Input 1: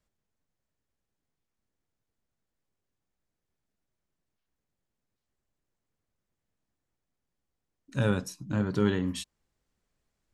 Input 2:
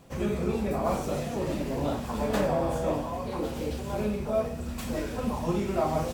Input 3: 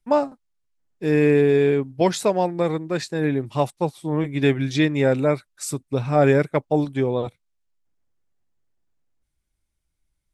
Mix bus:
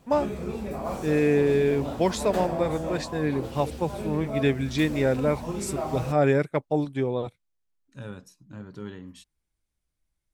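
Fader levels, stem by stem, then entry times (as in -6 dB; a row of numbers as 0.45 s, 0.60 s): -12.5 dB, -4.0 dB, -4.5 dB; 0.00 s, 0.00 s, 0.00 s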